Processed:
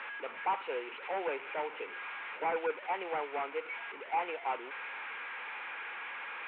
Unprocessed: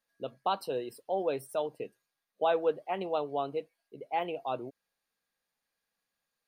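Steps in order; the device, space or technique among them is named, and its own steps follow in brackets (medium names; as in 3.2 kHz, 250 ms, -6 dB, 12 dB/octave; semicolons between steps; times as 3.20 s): digital answering machine (band-pass 310–3200 Hz; one-bit delta coder 16 kbps, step -41 dBFS; cabinet simulation 470–4100 Hz, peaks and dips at 640 Hz -9 dB, 910 Hz +7 dB, 1.4 kHz +6 dB, 2.3 kHz +9 dB); trim +1.5 dB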